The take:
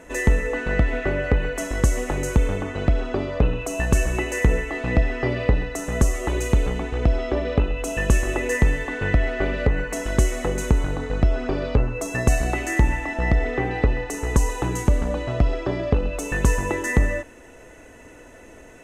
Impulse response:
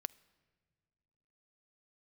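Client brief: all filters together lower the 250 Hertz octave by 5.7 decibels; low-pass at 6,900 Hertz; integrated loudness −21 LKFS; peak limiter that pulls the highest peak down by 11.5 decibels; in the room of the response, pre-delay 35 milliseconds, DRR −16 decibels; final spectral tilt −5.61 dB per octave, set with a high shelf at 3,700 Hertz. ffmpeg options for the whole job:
-filter_complex "[0:a]lowpass=6900,equalizer=frequency=250:width_type=o:gain=-8,highshelf=frequency=3700:gain=-9,alimiter=limit=-18.5dB:level=0:latency=1,asplit=2[link_01][link_02];[1:a]atrim=start_sample=2205,adelay=35[link_03];[link_02][link_03]afir=irnorm=-1:irlink=0,volume=18.5dB[link_04];[link_01][link_04]amix=inputs=2:normalize=0,volume=-8dB"

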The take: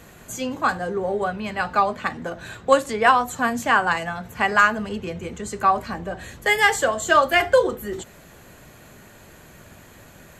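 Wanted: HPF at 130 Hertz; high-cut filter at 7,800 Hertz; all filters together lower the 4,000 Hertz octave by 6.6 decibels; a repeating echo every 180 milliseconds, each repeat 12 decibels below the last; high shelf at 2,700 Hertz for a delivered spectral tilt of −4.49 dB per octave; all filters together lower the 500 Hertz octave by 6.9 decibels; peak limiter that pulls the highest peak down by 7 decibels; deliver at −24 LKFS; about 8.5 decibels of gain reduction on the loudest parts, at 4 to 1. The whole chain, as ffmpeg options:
ffmpeg -i in.wav -af "highpass=130,lowpass=7800,equalizer=frequency=500:width_type=o:gain=-8,highshelf=frequency=2700:gain=-3.5,equalizer=frequency=4000:width_type=o:gain=-7,acompressor=threshold=-24dB:ratio=4,alimiter=limit=-20dB:level=0:latency=1,aecho=1:1:180|360|540:0.251|0.0628|0.0157,volume=7.5dB" out.wav

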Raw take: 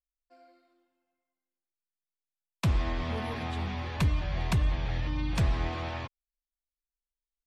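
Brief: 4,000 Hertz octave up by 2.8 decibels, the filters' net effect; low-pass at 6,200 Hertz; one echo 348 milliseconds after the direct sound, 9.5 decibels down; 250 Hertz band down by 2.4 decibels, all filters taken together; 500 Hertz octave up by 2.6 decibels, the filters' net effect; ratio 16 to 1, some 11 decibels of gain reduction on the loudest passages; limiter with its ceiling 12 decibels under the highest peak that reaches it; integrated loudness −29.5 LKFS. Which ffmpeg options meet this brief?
ffmpeg -i in.wav -af "lowpass=6200,equalizer=frequency=250:width_type=o:gain=-5,equalizer=frequency=500:width_type=o:gain=4.5,equalizer=frequency=4000:width_type=o:gain=4,acompressor=threshold=-33dB:ratio=16,alimiter=level_in=8dB:limit=-24dB:level=0:latency=1,volume=-8dB,aecho=1:1:348:0.335,volume=12dB" out.wav

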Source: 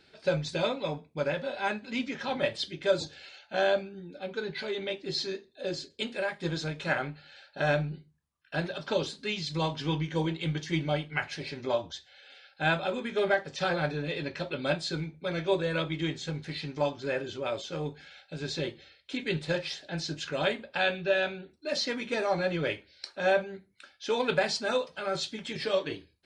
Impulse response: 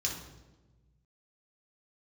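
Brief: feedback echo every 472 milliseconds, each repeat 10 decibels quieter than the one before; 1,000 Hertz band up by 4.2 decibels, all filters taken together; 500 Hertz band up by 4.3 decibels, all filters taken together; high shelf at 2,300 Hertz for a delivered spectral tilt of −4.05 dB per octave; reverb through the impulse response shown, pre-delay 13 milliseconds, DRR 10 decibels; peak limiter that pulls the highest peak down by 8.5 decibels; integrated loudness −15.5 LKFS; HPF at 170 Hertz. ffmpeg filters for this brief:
-filter_complex "[0:a]highpass=170,equalizer=frequency=500:width_type=o:gain=4,equalizer=frequency=1000:width_type=o:gain=3.5,highshelf=frequency=2300:gain=3.5,alimiter=limit=-17dB:level=0:latency=1,aecho=1:1:472|944|1416|1888:0.316|0.101|0.0324|0.0104,asplit=2[link_01][link_02];[1:a]atrim=start_sample=2205,adelay=13[link_03];[link_02][link_03]afir=irnorm=-1:irlink=0,volume=-14dB[link_04];[link_01][link_04]amix=inputs=2:normalize=0,volume=14dB"

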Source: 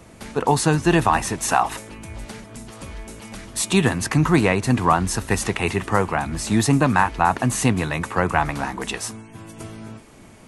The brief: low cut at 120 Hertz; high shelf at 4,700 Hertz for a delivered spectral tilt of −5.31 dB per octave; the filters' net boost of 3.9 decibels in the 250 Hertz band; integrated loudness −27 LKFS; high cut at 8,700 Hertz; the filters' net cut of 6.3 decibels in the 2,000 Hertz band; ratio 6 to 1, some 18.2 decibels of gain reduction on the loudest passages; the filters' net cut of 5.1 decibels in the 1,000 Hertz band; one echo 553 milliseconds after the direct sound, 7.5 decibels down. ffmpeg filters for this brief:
ffmpeg -i in.wav -af "highpass=120,lowpass=8700,equalizer=frequency=250:width_type=o:gain=6,equalizer=frequency=1000:width_type=o:gain=-5.5,equalizer=frequency=2000:width_type=o:gain=-5,highshelf=frequency=4700:gain=-8,acompressor=threshold=-31dB:ratio=6,aecho=1:1:553:0.422,volume=7.5dB" out.wav

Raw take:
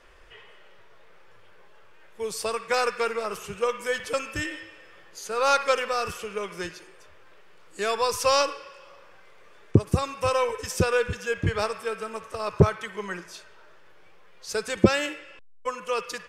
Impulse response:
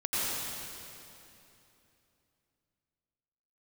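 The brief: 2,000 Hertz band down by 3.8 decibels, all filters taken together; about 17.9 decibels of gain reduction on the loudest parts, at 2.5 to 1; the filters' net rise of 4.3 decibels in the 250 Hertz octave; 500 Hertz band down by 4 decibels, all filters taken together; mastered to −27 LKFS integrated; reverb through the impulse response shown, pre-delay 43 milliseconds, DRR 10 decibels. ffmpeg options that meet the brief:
-filter_complex "[0:a]equalizer=frequency=250:width_type=o:gain=8,equalizer=frequency=500:width_type=o:gain=-6.5,equalizer=frequency=2000:width_type=o:gain=-5,acompressor=threshold=-40dB:ratio=2.5,asplit=2[link_01][link_02];[1:a]atrim=start_sample=2205,adelay=43[link_03];[link_02][link_03]afir=irnorm=-1:irlink=0,volume=-19.5dB[link_04];[link_01][link_04]amix=inputs=2:normalize=0,volume=13dB"

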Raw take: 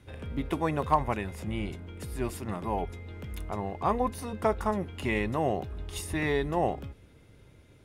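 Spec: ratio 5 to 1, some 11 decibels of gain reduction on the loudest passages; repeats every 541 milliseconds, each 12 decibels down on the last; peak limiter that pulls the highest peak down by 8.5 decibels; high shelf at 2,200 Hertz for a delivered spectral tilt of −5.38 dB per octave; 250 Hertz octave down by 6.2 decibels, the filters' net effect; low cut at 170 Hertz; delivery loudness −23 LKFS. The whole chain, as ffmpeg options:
ffmpeg -i in.wav -af "highpass=170,equalizer=frequency=250:width_type=o:gain=-7,highshelf=frequency=2200:gain=-8,acompressor=threshold=-34dB:ratio=5,alimiter=level_in=5dB:limit=-24dB:level=0:latency=1,volume=-5dB,aecho=1:1:541|1082|1623:0.251|0.0628|0.0157,volume=19dB" out.wav

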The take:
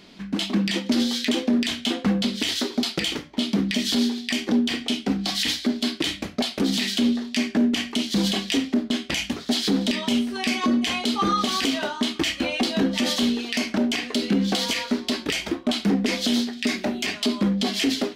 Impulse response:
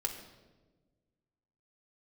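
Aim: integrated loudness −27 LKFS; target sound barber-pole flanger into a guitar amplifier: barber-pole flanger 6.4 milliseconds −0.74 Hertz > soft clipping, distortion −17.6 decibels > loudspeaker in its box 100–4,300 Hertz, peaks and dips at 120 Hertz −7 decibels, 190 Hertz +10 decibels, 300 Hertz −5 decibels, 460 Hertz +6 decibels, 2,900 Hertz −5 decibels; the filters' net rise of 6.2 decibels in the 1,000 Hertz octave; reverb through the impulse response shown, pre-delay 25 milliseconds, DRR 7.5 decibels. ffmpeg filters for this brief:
-filter_complex "[0:a]equalizer=frequency=1000:width_type=o:gain=8,asplit=2[link_01][link_02];[1:a]atrim=start_sample=2205,adelay=25[link_03];[link_02][link_03]afir=irnorm=-1:irlink=0,volume=-9.5dB[link_04];[link_01][link_04]amix=inputs=2:normalize=0,asplit=2[link_05][link_06];[link_06]adelay=6.4,afreqshift=-0.74[link_07];[link_05][link_07]amix=inputs=2:normalize=1,asoftclip=threshold=-16.5dB,highpass=100,equalizer=frequency=120:width_type=q:width=4:gain=-7,equalizer=frequency=190:width_type=q:width=4:gain=10,equalizer=frequency=300:width_type=q:width=4:gain=-5,equalizer=frequency=460:width_type=q:width=4:gain=6,equalizer=frequency=2900:width_type=q:width=4:gain=-5,lowpass=frequency=4300:width=0.5412,lowpass=frequency=4300:width=1.3066,volume=-1.5dB"

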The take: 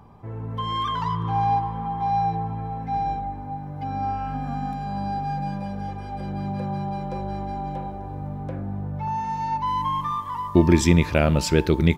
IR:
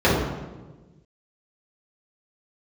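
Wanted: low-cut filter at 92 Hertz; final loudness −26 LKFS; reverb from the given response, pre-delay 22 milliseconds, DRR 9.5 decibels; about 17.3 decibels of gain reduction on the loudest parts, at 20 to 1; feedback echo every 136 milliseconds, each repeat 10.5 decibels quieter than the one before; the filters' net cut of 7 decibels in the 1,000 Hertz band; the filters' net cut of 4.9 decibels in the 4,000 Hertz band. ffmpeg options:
-filter_complex "[0:a]highpass=92,equalizer=frequency=1000:width_type=o:gain=-9,equalizer=frequency=4000:width_type=o:gain=-6,acompressor=threshold=-29dB:ratio=20,aecho=1:1:136|272|408:0.299|0.0896|0.0269,asplit=2[link_01][link_02];[1:a]atrim=start_sample=2205,adelay=22[link_03];[link_02][link_03]afir=irnorm=-1:irlink=0,volume=-32.5dB[link_04];[link_01][link_04]amix=inputs=2:normalize=0,volume=5dB"

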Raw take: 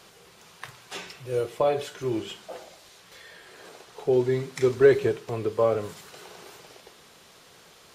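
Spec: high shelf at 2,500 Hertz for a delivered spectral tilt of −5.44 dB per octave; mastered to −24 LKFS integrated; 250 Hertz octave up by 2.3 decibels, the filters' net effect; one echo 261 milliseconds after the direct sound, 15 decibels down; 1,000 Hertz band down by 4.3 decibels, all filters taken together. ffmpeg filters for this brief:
ffmpeg -i in.wav -af "equalizer=frequency=250:width_type=o:gain=4.5,equalizer=frequency=1000:width_type=o:gain=-7.5,highshelf=frequency=2500:gain=6,aecho=1:1:261:0.178,volume=1dB" out.wav

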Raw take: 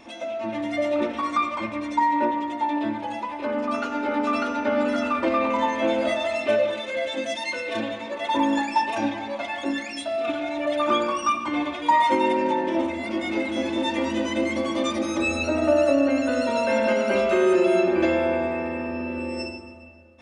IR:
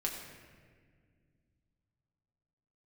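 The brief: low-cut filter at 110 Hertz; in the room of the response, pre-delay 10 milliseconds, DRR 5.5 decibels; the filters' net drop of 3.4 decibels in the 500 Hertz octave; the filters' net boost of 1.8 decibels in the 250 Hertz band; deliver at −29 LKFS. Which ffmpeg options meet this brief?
-filter_complex "[0:a]highpass=110,equalizer=frequency=250:width_type=o:gain=4.5,equalizer=frequency=500:width_type=o:gain=-6,asplit=2[link_01][link_02];[1:a]atrim=start_sample=2205,adelay=10[link_03];[link_02][link_03]afir=irnorm=-1:irlink=0,volume=-8.5dB[link_04];[link_01][link_04]amix=inputs=2:normalize=0,volume=-5dB"

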